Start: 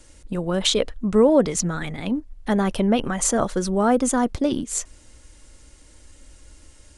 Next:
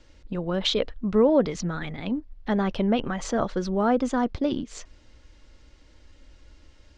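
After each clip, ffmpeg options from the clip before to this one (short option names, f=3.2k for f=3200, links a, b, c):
-af "lowpass=f=5k:w=0.5412,lowpass=f=5k:w=1.3066,volume=-3.5dB"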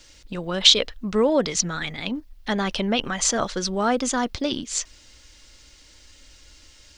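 -af "crystalizer=i=9:c=0,volume=-2dB"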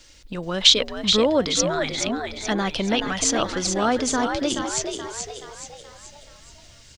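-filter_complex "[0:a]asplit=7[a][b][c][d][e][f][g];[b]adelay=427,afreqshift=72,volume=-6dB[h];[c]adelay=854,afreqshift=144,volume=-12.6dB[i];[d]adelay=1281,afreqshift=216,volume=-19.1dB[j];[e]adelay=1708,afreqshift=288,volume=-25.7dB[k];[f]adelay=2135,afreqshift=360,volume=-32.2dB[l];[g]adelay=2562,afreqshift=432,volume=-38.8dB[m];[a][h][i][j][k][l][m]amix=inputs=7:normalize=0"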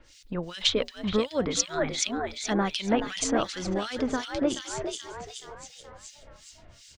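-filter_complex "[0:a]acrossover=split=2000[a][b];[a]aeval=exprs='val(0)*(1-1/2+1/2*cos(2*PI*2.7*n/s))':c=same[c];[b]aeval=exprs='val(0)*(1-1/2-1/2*cos(2*PI*2.7*n/s))':c=same[d];[c][d]amix=inputs=2:normalize=0"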